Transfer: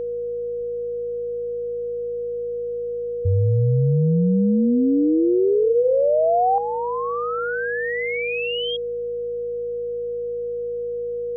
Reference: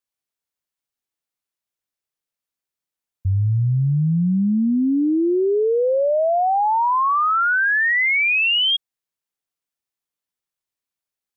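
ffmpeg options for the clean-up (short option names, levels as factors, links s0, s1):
-filter_complex "[0:a]bandreject=f=54.3:t=h:w=4,bandreject=f=108.6:t=h:w=4,bandreject=f=162.9:t=h:w=4,bandreject=f=217.2:t=h:w=4,bandreject=f=480:w=30,asplit=3[s0][s1][s2];[s0]afade=t=out:st=0.57:d=0.02[s3];[s1]highpass=f=140:w=0.5412,highpass=f=140:w=1.3066,afade=t=in:st=0.57:d=0.02,afade=t=out:st=0.69:d=0.02[s4];[s2]afade=t=in:st=0.69:d=0.02[s5];[s3][s4][s5]amix=inputs=3:normalize=0,asetnsamples=n=441:p=0,asendcmd='6.58 volume volume 10dB',volume=1"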